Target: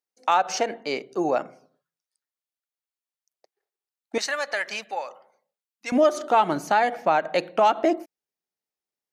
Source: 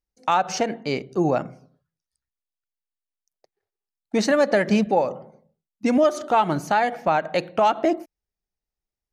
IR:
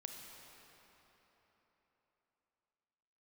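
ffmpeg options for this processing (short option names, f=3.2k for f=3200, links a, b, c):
-af "asetnsamples=n=441:p=0,asendcmd='4.18 highpass f 1200;5.92 highpass f 240',highpass=370"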